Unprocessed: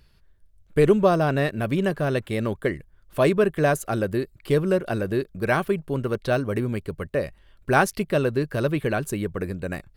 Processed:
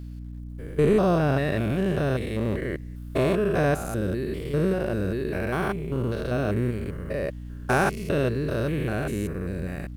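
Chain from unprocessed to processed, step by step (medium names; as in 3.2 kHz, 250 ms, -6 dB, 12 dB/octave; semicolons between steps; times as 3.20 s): spectrogram pixelated in time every 200 ms; bit crusher 11-bit; hum 60 Hz, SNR 11 dB; trim +1.5 dB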